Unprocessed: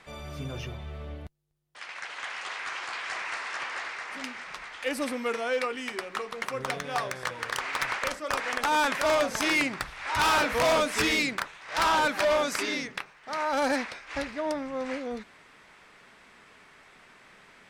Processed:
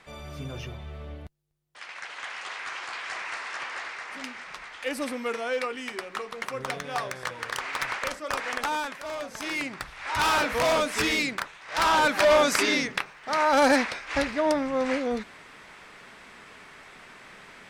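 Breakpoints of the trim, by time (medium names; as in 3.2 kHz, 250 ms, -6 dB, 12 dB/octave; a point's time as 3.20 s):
8.62 s -0.5 dB
9.00 s -12 dB
10.07 s 0 dB
11.66 s 0 dB
12.47 s +6.5 dB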